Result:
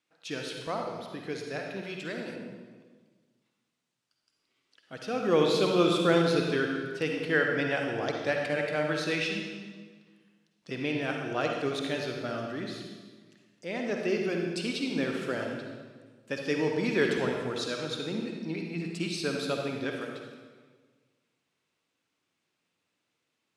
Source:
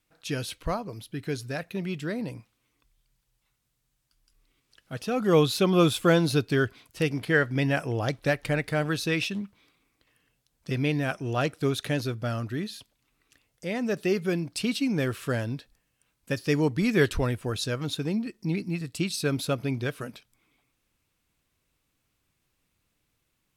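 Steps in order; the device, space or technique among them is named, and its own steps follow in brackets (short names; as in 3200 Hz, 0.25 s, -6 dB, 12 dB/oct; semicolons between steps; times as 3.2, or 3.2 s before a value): supermarket ceiling speaker (BPF 250–6600 Hz; reverb RT60 1.5 s, pre-delay 45 ms, DRR 1 dB); 1.83–2.36 tilt +1.5 dB/oct; gain -3.5 dB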